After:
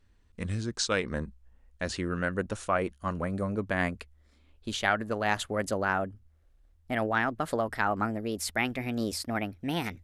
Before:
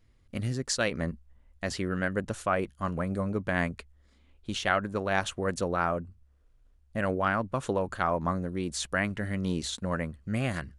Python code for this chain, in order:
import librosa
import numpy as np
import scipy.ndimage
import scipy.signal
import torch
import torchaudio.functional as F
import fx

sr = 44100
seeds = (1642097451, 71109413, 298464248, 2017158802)

y = fx.speed_glide(x, sr, from_pct=86, to_pct=129)
y = fx.peak_eq(y, sr, hz=140.0, db=-7.0, octaves=0.39)